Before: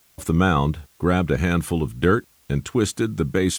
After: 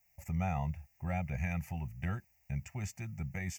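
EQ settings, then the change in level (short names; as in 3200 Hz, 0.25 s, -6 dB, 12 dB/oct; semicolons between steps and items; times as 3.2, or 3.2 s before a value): dynamic EQ 3900 Hz, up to +4 dB, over -42 dBFS, Q 1.8; fixed phaser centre 1100 Hz, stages 6; fixed phaser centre 2200 Hz, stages 8; -9.0 dB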